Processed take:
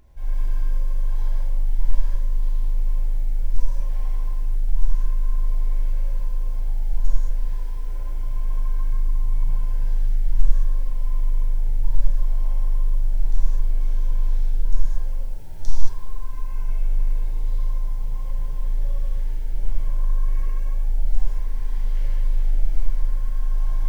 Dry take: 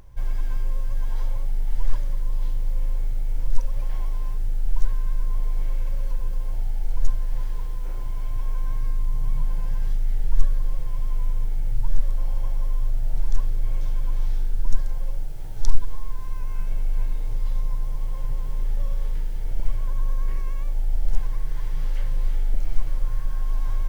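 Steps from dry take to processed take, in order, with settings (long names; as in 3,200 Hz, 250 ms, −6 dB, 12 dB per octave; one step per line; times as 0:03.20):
Butterworth band-reject 1,200 Hz, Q 7.3
reverb whose tail is shaped and stops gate 250 ms flat, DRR −7 dB
level −9.5 dB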